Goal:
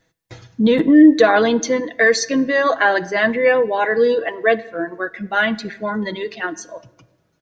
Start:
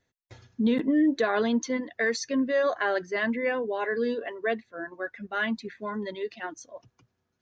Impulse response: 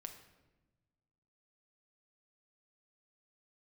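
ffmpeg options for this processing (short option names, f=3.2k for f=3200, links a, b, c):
-filter_complex "[0:a]aecho=1:1:6.2:0.51,asplit=2[a][b];[1:a]atrim=start_sample=2205[c];[b][c]afir=irnorm=-1:irlink=0,volume=-3dB[d];[a][d]amix=inputs=2:normalize=0,volume=8dB"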